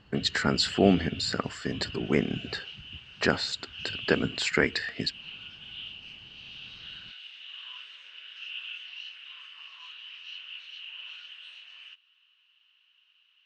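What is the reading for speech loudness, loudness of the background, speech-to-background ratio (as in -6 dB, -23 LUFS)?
-28.0 LUFS, -41.0 LUFS, 13.0 dB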